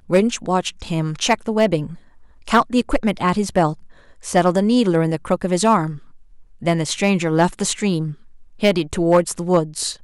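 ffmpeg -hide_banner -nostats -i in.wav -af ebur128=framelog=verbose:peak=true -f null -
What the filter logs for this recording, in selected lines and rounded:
Integrated loudness:
  I:         -19.1 LUFS
  Threshold: -29.7 LUFS
Loudness range:
  LRA:         1.6 LU
  Threshold: -39.7 LUFS
  LRA low:   -20.5 LUFS
  LRA high:  -18.9 LUFS
True peak:
  Peak:       -6.4 dBFS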